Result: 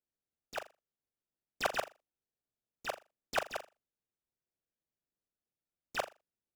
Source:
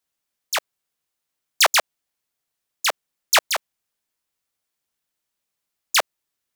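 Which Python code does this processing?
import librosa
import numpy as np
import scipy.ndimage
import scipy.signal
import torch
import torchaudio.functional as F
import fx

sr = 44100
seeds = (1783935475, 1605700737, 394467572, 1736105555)

y = scipy.ndimage.median_filter(x, 41, mode='constant')
y = fx.room_flutter(y, sr, wall_m=7.0, rt60_s=0.24)
y = fx.doppler_dist(y, sr, depth_ms=0.34)
y = F.gain(torch.from_numpy(y), -6.5).numpy()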